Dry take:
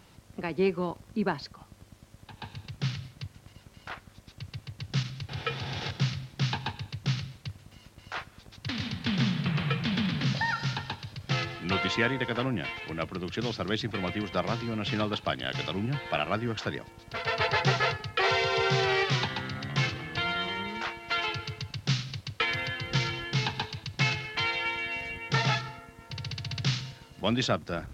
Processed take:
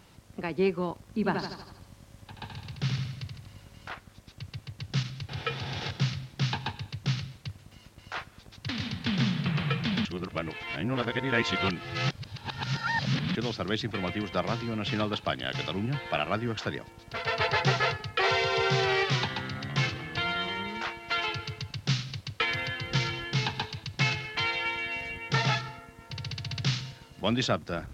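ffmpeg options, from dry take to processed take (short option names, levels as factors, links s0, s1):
-filter_complex "[0:a]asettb=1/sr,asplit=3[s0][s1][s2];[s0]atrim=end=1.044[s3];[s1]atrim=start=1.04:end=3.88,asetpts=PTS-STARTPTS,afade=t=in:d=0.004:c=qsin,afade=t=out:st=2.836:d=0.004:c=qsin,aecho=1:1:79|158|237|316|395|474|553:0.562|0.292|0.152|0.0791|0.0411|0.0214|0.0111,atrim=end_sample=125244[s4];[s2]atrim=start=3.876[s5];[s3][s4]acrossfade=d=0.004:c1=hsin:c2=qsin[s6];[s6][s5]acrossfade=d=0.004:c1=qsin:c2=hsin,asplit=3[s7][s8][s9];[s7]atrim=end=10.052[s10];[s8]atrim=start=10.048:end=13.352,asetpts=PTS-STARTPTS,areverse[s11];[s9]atrim=start=13.348[s12];[s10][s11]acrossfade=d=0.004:c1=hsin:c2=hsin[s13];[s13][s12]acrossfade=d=0.004:c1=hsin:c2=hsin"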